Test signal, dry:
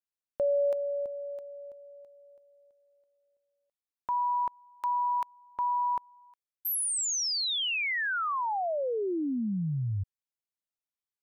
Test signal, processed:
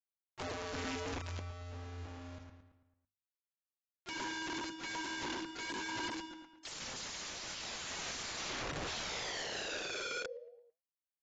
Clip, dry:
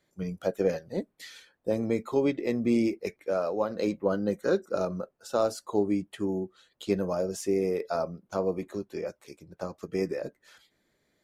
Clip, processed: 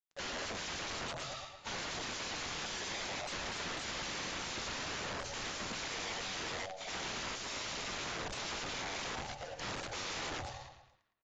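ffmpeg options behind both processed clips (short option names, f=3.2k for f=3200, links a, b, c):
-filter_complex "[0:a]afftfilt=real='real(if(lt(b,1008),b+24*(1-2*mod(floor(b/24),2)),b),0)':imag='imag(if(lt(b,1008),b+24*(1-2*mod(floor(b/24),2)),b),0)':win_size=2048:overlap=0.75,acompressor=mode=upward:threshold=-43dB:ratio=2.5:attack=0.52:release=52:knee=2.83:detection=peak,afreqshift=-140,acrusher=bits=7:mix=0:aa=0.000001,bandreject=f=50:t=h:w=6,bandreject=f=100:t=h:w=6,bandreject=f=150:t=h:w=6,bandreject=f=200:t=h:w=6,bandreject=f=250:t=h:w=6,bandreject=f=300:t=h:w=6,asplit=2[a][b];[b]adelay=111,lowpass=f=4.2k:p=1,volume=-4.5dB,asplit=2[c][d];[d]adelay=111,lowpass=f=4.2k:p=1,volume=0.5,asplit=2[e][f];[f]adelay=111,lowpass=f=4.2k:p=1,volume=0.5,asplit=2[g][h];[h]adelay=111,lowpass=f=4.2k:p=1,volume=0.5,asplit=2[i][j];[j]adelay=111,lowpass=f=4.2k:p=1,volume=0.5,asplit=2[k][l];[l]adelay=111,lowpass=f=4.2k:p=1,volume=0.5[m];[a][c][e][g][i][k][m]amix=inputs=7:normalize=0,flanger=delay=5.2:depth=9.5:regen=84:speed=0.64:shape=sinusoidal,acompressor=threshold=-37dB:ratio=12:attack=96:release=61:knee=6:detection=rms,aeval=exprs='(mod(100*val(0)+1,2)-1)/100':c=same,volume=4.5dB" -ar 16000 -c:a aac -b:a 24k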